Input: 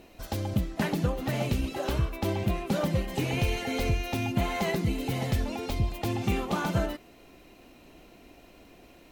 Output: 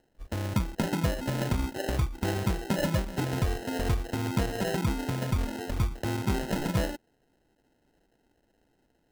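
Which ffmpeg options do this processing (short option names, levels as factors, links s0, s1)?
-af "afwtdn=0.0316,acrusher=samples=38:mix=1:aa=0.000001"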